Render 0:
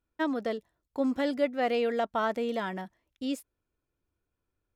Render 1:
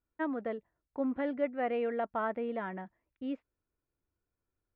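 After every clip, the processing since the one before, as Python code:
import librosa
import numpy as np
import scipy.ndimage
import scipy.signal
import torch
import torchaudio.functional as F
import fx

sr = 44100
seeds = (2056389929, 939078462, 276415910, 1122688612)

y = scipy.signal.sosfilt(scipy.signal.butter(4, 2300.0, 'lowpass', fs=sr, output='sos'), x)
y = F.gain(torch.from_numpy(y), -4.5).numpy()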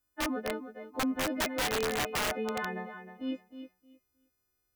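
y = fx.freq_snap(x, sr, grid_st=3)
y = fx.echo_feedback(y, sr, ms=311, feedback_pct=19, wet_db=-10.5)
y = (np.mod(10.0 ** (26.5 / 20.0) * y + 1.0, 2.0) - 1.0) / 10.0 ** (26.5 / 20.0)
y = F.gain(torch.from_numpy(y), 2.0).numpy()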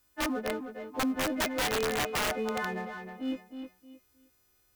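y = fx.law_mismatch(x, sr, coded='mu')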